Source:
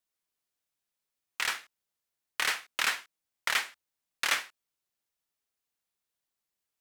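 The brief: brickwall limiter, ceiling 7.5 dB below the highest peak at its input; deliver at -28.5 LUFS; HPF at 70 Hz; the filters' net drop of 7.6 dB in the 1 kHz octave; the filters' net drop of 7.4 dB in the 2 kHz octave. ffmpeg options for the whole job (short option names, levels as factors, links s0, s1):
-af "highpass=70,equalizer=f=1000:t=o:g=-7.5,equalizer=f=2000:t=o:g=-7,volume=3.35,alimiter=limit=0.211:level=0:latency=1"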